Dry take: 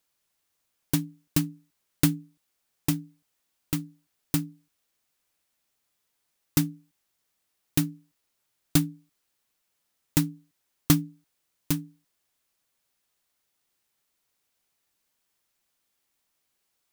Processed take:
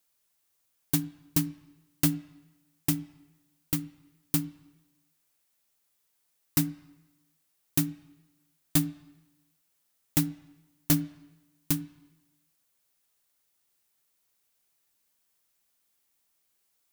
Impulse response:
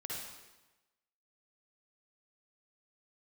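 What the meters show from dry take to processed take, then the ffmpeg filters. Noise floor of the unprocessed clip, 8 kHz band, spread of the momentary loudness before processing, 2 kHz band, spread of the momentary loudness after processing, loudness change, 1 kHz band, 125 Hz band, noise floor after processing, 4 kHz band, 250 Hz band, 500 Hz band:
−78 dBFS, 0.0 dB, 12 LU, −2.5 dB, 15 LU, −1.0 dB, −3.0 dB, −3.0 dB, −74 dBFS, −2.5 dB, −2.5 dB, −4.5 dB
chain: -filter_complex "[0:a]highshelf=frequency=6600:gain=7.5,asoftclip=type=hard:threshold=-14dB,asplit=2[link_01][link_02];[1:a]atrim=start_sample=2205,lowpass=3100[link_03];[link_02][link_03]afir=irnorm=-1:irlink=0,volume=-15dB[link_04];[link_01][link_04]amix=inputs=2:normalize=0,volume=-2.5dB"

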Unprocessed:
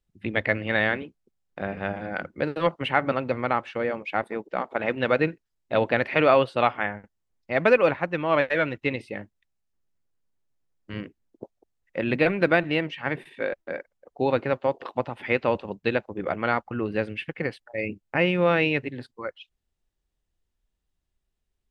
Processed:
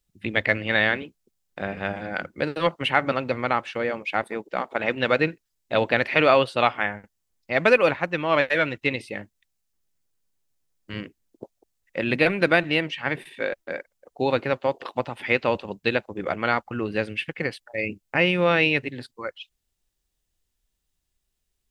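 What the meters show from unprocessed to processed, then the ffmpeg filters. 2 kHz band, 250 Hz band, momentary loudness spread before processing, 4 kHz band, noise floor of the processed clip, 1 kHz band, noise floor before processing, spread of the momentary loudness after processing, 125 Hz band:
+3.5 dB, 0.0 dB, 15 LU, +6.0 dB, −77 dBFS, +1.0 dB, −79 dBFS, 15 LU, 0.0 dB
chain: -af "highshelf=frequency=3100:gain=11.5"

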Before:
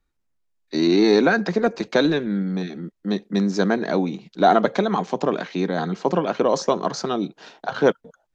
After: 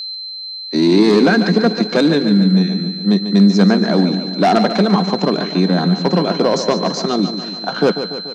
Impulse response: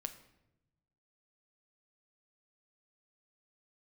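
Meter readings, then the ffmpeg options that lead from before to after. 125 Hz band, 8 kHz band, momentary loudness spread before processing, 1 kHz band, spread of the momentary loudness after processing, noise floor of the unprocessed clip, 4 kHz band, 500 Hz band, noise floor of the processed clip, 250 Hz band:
+11.5 dB, can't be measured, 11 LU, +3.0 dB, 9 LU, −72 dBFS, +12.0 dB, +4.0 dB, −29 dBFS, +9.0 dB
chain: -filter_complex "[0:a]aeval=exprs='val(0)+0.0398*sin(2*PI*4100*n/s)':channel_layout=same,aeval=exprs='0.708*(cos(1*acos(clip(val(0)/0.708,-1,1)))-cos(1*PI/2))+0.2*(cos(5*acos(clip(val(0)/0.708,-1,1)))-cos(5*PI/2))+0.0398*(cos(7*acos(clip(val(0)/0.708,-1,1)))-cos(7*PI/2))':channel_layout=same,lowshelf=frequency=120:width_type=q:width=3:gain=-14,asplit=2[link_01][link_02];[link_02]aecho=0:1:144|288|432|576|720|864|1008:0.316|0.187|0.11|0.0649|0.0383|0.0226|0.0133[link_03];[link_01][link_03]amix=inputs=2:normalize=0,volume=-2dB"

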